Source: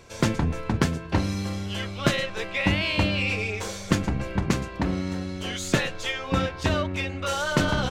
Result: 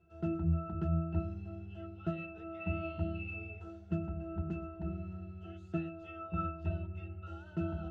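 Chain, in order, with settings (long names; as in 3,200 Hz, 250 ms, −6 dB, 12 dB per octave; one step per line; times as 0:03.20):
resonances in every octave E, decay 0.33 s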